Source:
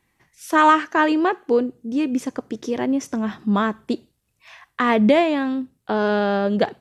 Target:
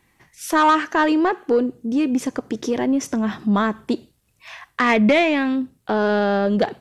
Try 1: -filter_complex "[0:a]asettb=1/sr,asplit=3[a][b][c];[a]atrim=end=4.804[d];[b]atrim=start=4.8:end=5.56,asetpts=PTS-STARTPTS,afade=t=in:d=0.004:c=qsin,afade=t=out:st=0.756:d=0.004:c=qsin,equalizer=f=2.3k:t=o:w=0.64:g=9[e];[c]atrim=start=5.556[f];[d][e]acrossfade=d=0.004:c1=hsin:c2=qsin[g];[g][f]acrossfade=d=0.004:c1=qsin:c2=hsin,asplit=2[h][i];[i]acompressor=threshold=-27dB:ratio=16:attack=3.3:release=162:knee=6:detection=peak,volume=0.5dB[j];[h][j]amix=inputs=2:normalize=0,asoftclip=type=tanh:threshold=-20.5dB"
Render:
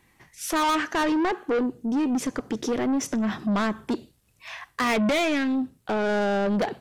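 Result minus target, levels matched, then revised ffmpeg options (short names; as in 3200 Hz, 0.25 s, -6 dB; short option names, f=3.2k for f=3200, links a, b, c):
soft clip: distortion +11 dB
-filter_complex "[0:a]asettb=1/sr,asplit=3[a][b][c];[a]atrim=end=4.804[d];[b]atrim=start=4.8:end=5.56,asetpts=PTS-STARTPTS,afade=t=in:d=0.004:c=qsin,afade=t=out:st=0.756:d=0.004:c=qsin,equalizer=f=2.3k:t=o:w=0.64:g=9[e];[c]atrim=start=5.556[f];[d][e]acrossfade=d=0.004:c1=hsin:c2=qsin[g];[g][f]acrossfade=d=0.004:c1=qsin:c2=hsin,asplit=2[h][i];[i]acompressor=threshold=-27dB:ratio=16:attack=3.3:release=162:knee=6:detection=peak,volume=0.5dB[j];[h][j]amix=inputs=2:normalize=0,asoftclip=type=tanh:threshold=-8.5dB"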